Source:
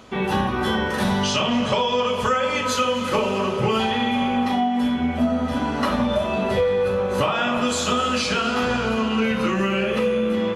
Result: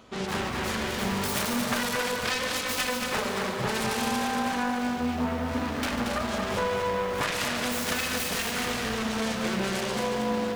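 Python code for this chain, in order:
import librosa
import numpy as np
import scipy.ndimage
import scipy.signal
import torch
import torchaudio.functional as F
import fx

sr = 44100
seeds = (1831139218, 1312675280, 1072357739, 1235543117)

p1 = fx.self_delay(x, sr, depth_ms=0.68)
p2 = p1 + fx.echo_single(p1, sr, ms=145, db=-11.0, dry=0)
p3 = fx.echo_crushed(p2, sr, ms=229, feedback_pct=35, bits=7, wet_db=-5.0)
y = p3 * librosa.db_to_amplitude(-7.0)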